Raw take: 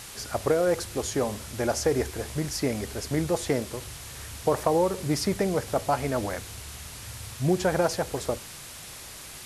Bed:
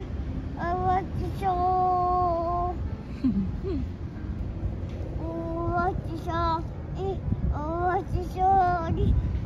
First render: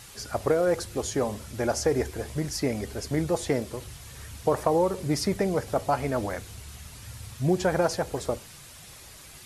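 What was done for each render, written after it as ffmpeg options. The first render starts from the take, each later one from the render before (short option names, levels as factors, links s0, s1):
-af "afftdn=nr=7:nf=-43"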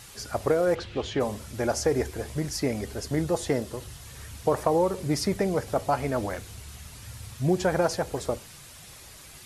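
-filter_complex "[0:a]asplit=3[s0][s1][s2];[s0]afade=t=out:st=0.74:d=0.02[s3];[s1]lowpass=f=3100:t=q:w=2.3,afade=t=in:st=0.74:d=0.02,afade=t=out:st=1.19:d=0.02[s4];[s2]afade=t=in:st=1.19:d=0.02[s5];[s3][s4][s5]amix=inputs=3:normalize=0,asettb=1/sr,asplit=3[s6][s7][s8];[s6]atrim=end=2.944[s9];[s7]atrim=start=2.94:end=4.05,asetpts=PTS-STARTPTS,afade=t=in:d=0.004:c=qsin,afade=t=out:st=1.106:d=0.004:c=qsin,bandreject=f=2300:w=12[s10];[s8]atrim=start=4.046[s11];[s9][s10]acrossfade=d=0.004:c1=hsin:c2=qsin[s12];[s12][s11]acrossfade=d=0.004:c1=qsin:c2=hsin,asettb=1/sr,asplit=3[s13][s14][s15];[s13]atrim=end=6.344[s16];[s14]atrim=start=6.34:end=7.22,asetpts=PTS-STARTPTS,afade=t=in:d=0.004:c=qsin,afade=t=out:st=0.876:d=0.004:c=qsin,aeval=exprs='clip(val(0),-1,0.0224)':c=same[s17];[s15]atrim=start=7.216[s18];[s16][s17]acrossfade=d=0.004:c1=hsin:c2=qsin[s19];[s19][s18]acrossfade=d=0.004:c1=qsin:c2=hsin"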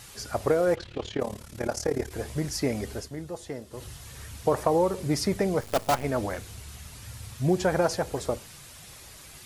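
-filter_complex "[0:a]asettb=1/sr,asplit=3[s0][s1][s2];[s0]atrim=end=0.754[s3];[s1]atrim=start=0.75:end=2.11,asetpts=PTS-STARTPTS,afade=t=in:d=0.004:c=qsin,afade=t=out:st=1.356:d=0.004:c=qsin,tremolo=f=36:d=0.857[s4];[s2]atrim=start=2.106[s5];[s3][s4]acrossfade=d=0.004:c1=hsin:c2=qsin[s6];[s6][s5]acrossfade=d=0.004:c1=qsin:c2=hsin,asplit=3[s7][s8][s9];[s7]afade=t=out:st=5.6:d=0.02[s10];[s8]acrusher=bits=5:dc=4:mix=0:aa=0.000001,afade=t=in:st=5.6:d=0.02,afade=t=out:st=6.03:d=0.02[s11];[s9]afade=t=in:st=6.03:d=0.02[s12];[s10][s11][s12]amix=inputs=3:normalize=0,asplit=3[s13][s14][s15];[s13]atrim=end=3.1,asetpts=PTS-STARTPTS,afade=t=out:st=2.96:d=0.14:silence=0.298538[s16];[s14]atrim=start=3.1:end=3.7,asetpts=PTS-STARTPTS,volume=0.299[s17];[s15]atrim=start=3.7,asetpts=PTS-STARTPTS,afade=t=in:d=0.14:silence=0.298538[s18];[s16][s17][s18]concat=n=3:v=0:a=1"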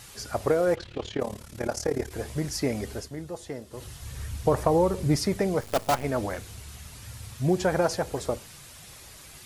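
-filter_complex "[0:a]asettb=1/sr,asplit=3[s0][s1][s2];[s0]atrim=end=4.024[s3];[s1]atrim=start=4.02:end=5.16,asetpts=PTS-STARTPTS,afade=t=in:d=0.004:c=qsin,afade=t=out:st=1.136:d=0.004:c=qsin,lowshelf=f=140:g=11[s4];[s2]atrim=start=5.156[s5];[s3][s4]acrossfade=d=0.004:c1=hsin:c2=qsin[s6];[s6][s5]acrossfade=d=0.004:c1=qsin:c2=hsin"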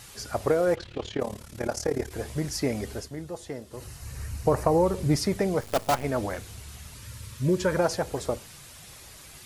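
-filter_complex "[0:a]asettb=1/sr,asplit=3[s0][s1][s2];[s0]atrim=end=3.764[s3];[s1]atrim=start=3.76:end=4.86,asetpts=PTS-STARTPTS,afade=t=in:d=0.004:c=qsin,afade=t=out:st=1.096:d=0.004:c=qsin,equalizer=f=3400:t=o:w=0.21:g=-12[s4];[s2]atrim=start=4.856[s5];[s3][s4]acrossfade=d=0.004:c1=hsin:c2=qsin[s6];[s6][s5]acrossfade=d=0.004:c1=qsin:c2=hsin,asettb=1/sr,asplit=3[s7][s8][s9];[s7]atrim=end=6.944[s10];[s8]atrim=start=6.94:end=7.78,asetpts=PTS-STARTPTS,afade=t=in:d=0.004:c=qsin,afade=t=out:st=0.836:d=0.004:c=qsin,asuperstop=centerf=750:order=20:qfactor=3.5[s11];[s9]atrim=start=7.776[s12];[s10][s11]acrossfade=d=0.004:c1=hsin:c2=qsin[s13];[s13][s12]acrossfade=d=0.004:c1=qsin:c2=hsin"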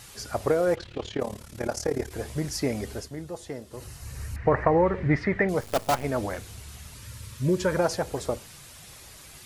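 -filter_complex "[0:a]asettb=1/sr,asplit=3[s0][s1][s2];[s0]atrim=end=4.364[s3];[s1]atrim=start=4.36:end=5.49,asetpts=PTS-STARTPTS,afade=t=in:d=0.004:c=qsin,afade=t=out:st=1.126:d=0.004:c=qsin,lowpass=f=1900:t=q:w=5[s4];[s2]atrim=start=5.486[s5];[s3][s4]acrossfade=d=0.004:c1=hsin:c2=qsin[s6];[s6][s5]acrossfade=d=0.004:c1=qsin:c2=hsin"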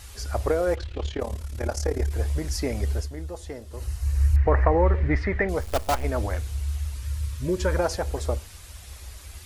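-af "lowshelf=f=100:t=q:w=3:g=11"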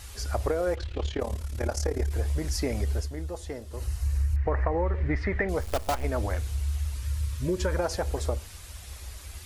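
-af "acompressor=threshold=0.0708:ratio=5"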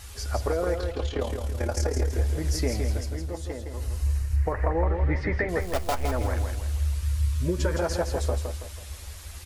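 -filter_complex "[0:a]asplit=2[s0][s1];[s1]adelay=12,volume=0.299[s2];[s0][s2]amix=inputs=2:normalize=0,asplit=2[s3][s4];[s4]aecho=0:1:164|328|492|656|820:0.501|0.205|0.0842|0.0345|0.0142[s5];[s3][s5]amix=inputs=2:normalize=0"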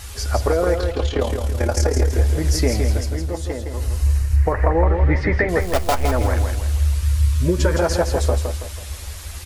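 -af "volume=2.51"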